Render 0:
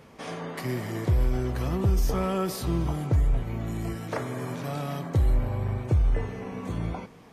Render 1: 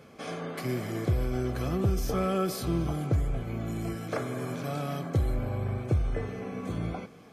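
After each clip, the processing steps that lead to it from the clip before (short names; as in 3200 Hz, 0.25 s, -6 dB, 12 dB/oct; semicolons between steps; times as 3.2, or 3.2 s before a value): notch comb 930 Hz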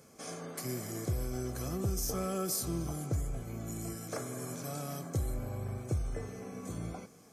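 resonant high shelf 4700 Hz +12 dB, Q 1.5; gain -7 dB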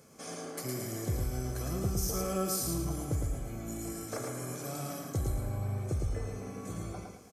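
feedback echo 0.11 s, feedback 36%, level -3.5 dB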